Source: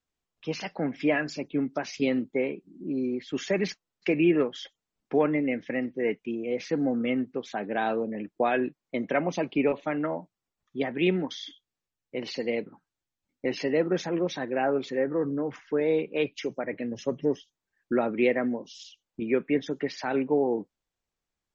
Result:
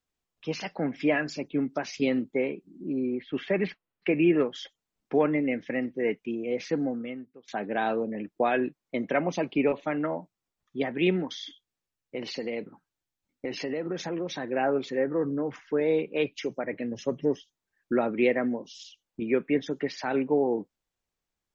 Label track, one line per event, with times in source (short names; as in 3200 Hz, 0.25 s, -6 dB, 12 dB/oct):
2.930000	4.360000	LPF 3200 Hz 24 dB/oct
6.740000	7.480000	fade out quadratic, to -20 dB
11.210000	14.450000	compressor, threshold -27 dBFS